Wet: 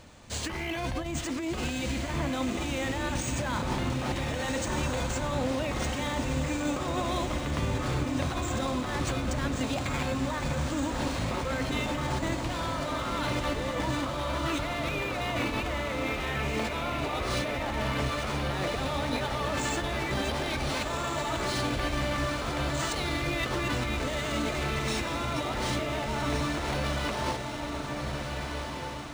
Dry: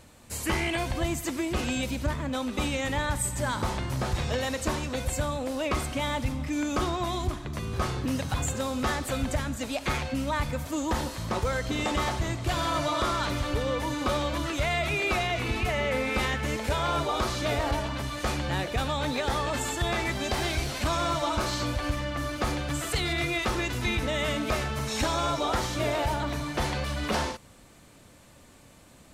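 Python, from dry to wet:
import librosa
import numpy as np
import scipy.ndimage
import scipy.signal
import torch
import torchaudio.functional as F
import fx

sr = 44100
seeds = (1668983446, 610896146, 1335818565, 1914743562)

y = fx.hum_notches(x, sr, base_hz=60, count=9)
y = fx.over_compress(y, sr, threshold_db=-32.0, ratio=-1.0)
y = fx.echo_diffused(y, sr, ms=1503, feedback_pct=48, wet_db=-3.5)
y = np.interp(np.arange(len(y)), np.arange(len(y))[::3], y[::3])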